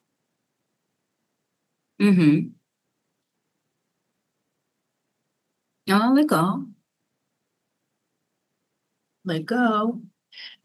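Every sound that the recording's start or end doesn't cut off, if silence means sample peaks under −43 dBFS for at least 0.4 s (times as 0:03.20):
0:02.00–0:02.53
0:05.87–0:06.72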